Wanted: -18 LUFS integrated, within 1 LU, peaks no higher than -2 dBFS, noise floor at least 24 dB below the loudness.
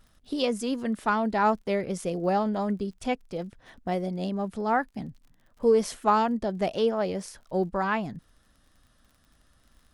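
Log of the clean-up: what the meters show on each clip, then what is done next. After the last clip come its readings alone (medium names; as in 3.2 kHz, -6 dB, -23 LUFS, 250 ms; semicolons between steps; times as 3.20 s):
tick rate 41 per s; loudness -28.0 LUFS; peak level -10.5 dBFS; loudness target -18.0 LUFS
-> de-click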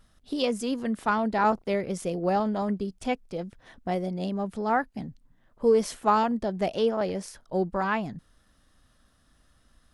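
tick rate 0.20 per s; loudness -28.0 LUFS; peak level -10.5 dBFS; loudness target -18.0 LUFS
-> trim +10 dB; peak limiter -2 dBFS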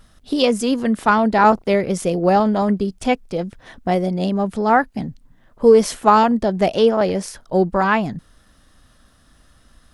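loudness -18.0 LUFS; peak level -2.0 dBFS; noise floor -55 dBFS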